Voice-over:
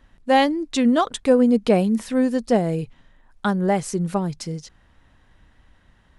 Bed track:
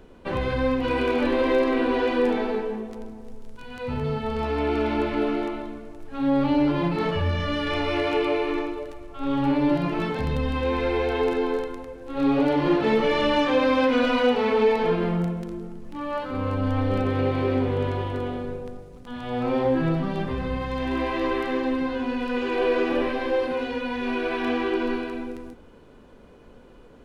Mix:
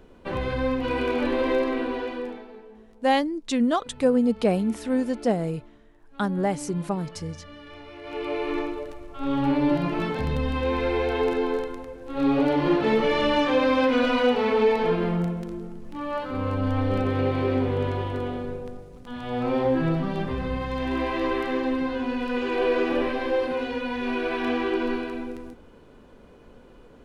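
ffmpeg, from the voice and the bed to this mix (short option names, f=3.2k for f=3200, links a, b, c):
-filter_complex "[0:a]adelay=2750,volume=-4.5dB[a];[1:a]volume=15.5dB,afade=t=out:st=1.53:d=0.92:silence=0.158489,afade=t=in:st=8.01:d=0.59:silence=0.133352[b];[a][b]amix=inputs=2:normalize=0"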